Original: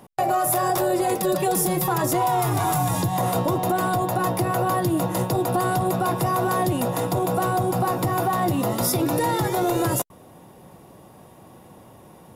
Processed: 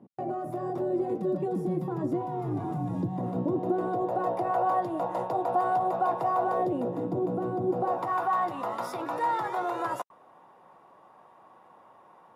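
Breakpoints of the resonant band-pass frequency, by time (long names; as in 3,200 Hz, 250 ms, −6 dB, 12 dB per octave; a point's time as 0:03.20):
resonant band-pass, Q 1.8
0:03.39 250 Hz
0:04.54 760 Hz
0:06.41 760 Hz
0:06.99 290 Hz
0:07.66 290 Hz
0:08.09 1,100 Hz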